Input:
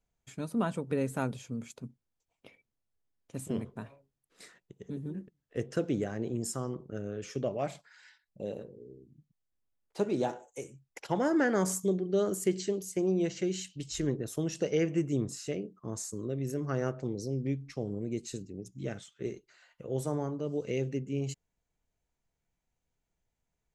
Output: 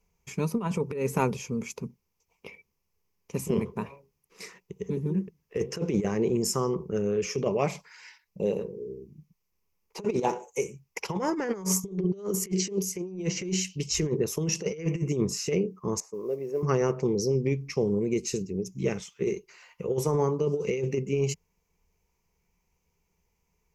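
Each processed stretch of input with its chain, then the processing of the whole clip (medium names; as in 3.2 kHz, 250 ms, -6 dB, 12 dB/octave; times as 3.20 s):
16.00–16.63 s: band-pass filter 670 Hz, Q 1.5 + modulation noise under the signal 35 dB
whole clip: rippled EQ curve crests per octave 0.8, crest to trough 11 dB; compressor with a negative ratio -31 dBFS, ratio -0.5; trim +5.5 dB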